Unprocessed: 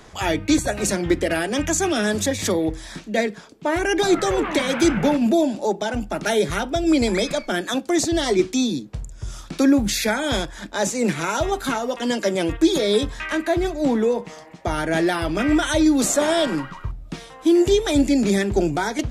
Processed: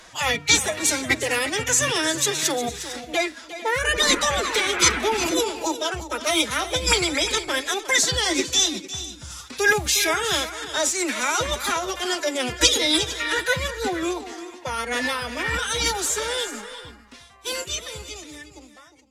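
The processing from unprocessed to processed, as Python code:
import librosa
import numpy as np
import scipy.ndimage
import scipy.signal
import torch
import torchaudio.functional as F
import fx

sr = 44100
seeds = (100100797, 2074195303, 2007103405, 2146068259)

p1 = fx.fade_out_tail(x, sr, length_s=5.74)
p2 = fx.low_shelf(p1, sr, hz=370.0, db=-5.5)
p3 = fx.pitch_keep_formants(p2, sr, semitones=7.0)
p4 = fx.tilt_shelf(p3, sr, db=-5.0, hz=800.0)
y = p4 + fx.echo_multitap(p4, sr, ms=(357, 454), db=(-13.0, -17.5), dry=0)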